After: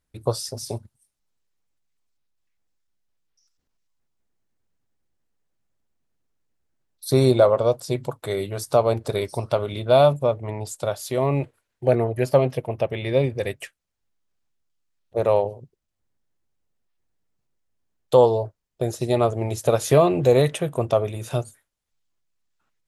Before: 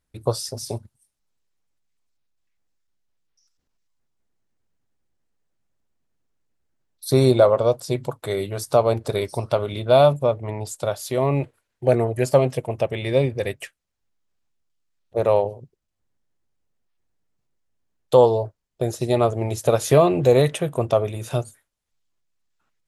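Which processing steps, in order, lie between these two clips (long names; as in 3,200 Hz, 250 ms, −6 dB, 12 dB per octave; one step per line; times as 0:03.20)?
0:11.88–0:13.24: parametric band 7,700 Hz −11 dB 0.68 octaves
level −1 dB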